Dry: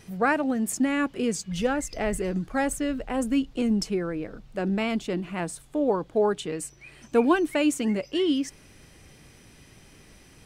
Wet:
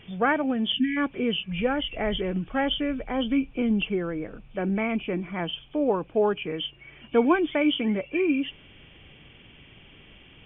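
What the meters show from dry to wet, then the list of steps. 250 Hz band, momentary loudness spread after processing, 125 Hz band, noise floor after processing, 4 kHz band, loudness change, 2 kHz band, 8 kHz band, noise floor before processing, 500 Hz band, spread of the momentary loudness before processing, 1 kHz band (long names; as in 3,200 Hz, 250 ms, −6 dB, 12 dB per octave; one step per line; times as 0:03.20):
0.0 dB, 8 LU, 0.0 dB, −52 dBFS, +7.0 dB, 0.0 dB, +1.5 dB, below −40 dB, −53 dBFS, 0.0 dB, 8 LU, 0.0 dB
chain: hearing-aid frequency compression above 2,200 Hz 4 to 1
time-frequency box erased 0:00.72–0:00.97, 290–1,500 Hz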